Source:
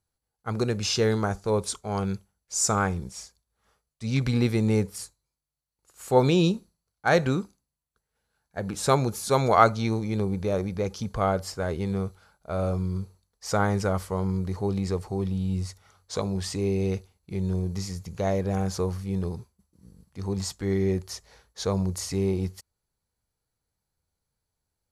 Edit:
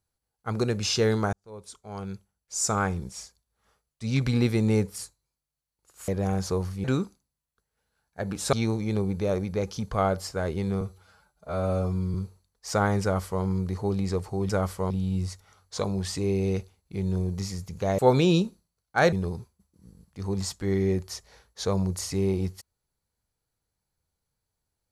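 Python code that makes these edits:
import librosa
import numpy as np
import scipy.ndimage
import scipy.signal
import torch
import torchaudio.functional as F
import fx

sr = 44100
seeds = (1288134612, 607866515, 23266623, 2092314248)

y = fx.edit(x, sr, fx.fade_in_span(start_s=1.33, length_s=1.73),
    fx.swap(start_s=6.08, length_s=1.14, other_s=18.36, other_length_s=0.76),
    fx.cut(start_s=8.91, length_s=0.85),
    fx.stretch_span(start_s=12.04, length_s=0.89, factor=1.5),
    fx.duplicate(start_s=13.81, length_s=0.41, to_s=15.28), tone=tone)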